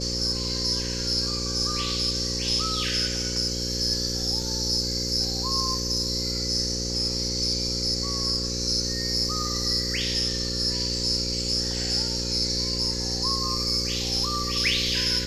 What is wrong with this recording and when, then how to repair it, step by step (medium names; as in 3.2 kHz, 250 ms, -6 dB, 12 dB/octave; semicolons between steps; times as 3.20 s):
buzz 60 Hz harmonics 9 -32 dBFS
4.42 s: dropout 2.4 ms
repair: de-hum 60 Hz, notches 9; interpolate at 4.42 s, 2.4 ms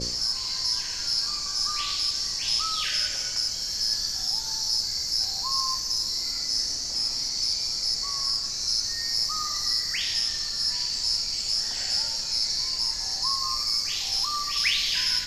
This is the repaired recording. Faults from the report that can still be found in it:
nothing left